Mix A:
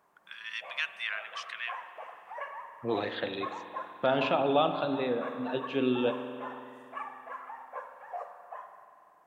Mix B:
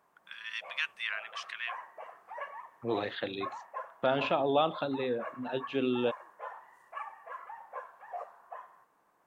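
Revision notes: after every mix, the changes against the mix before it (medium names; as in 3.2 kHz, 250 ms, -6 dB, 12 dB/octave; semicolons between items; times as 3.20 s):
reverb: off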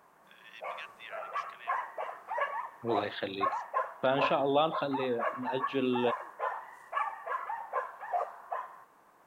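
first voice -12.0 dB; background +8.5 dB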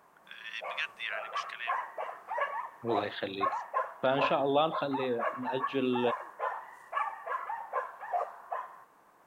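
first voice +10.5 dB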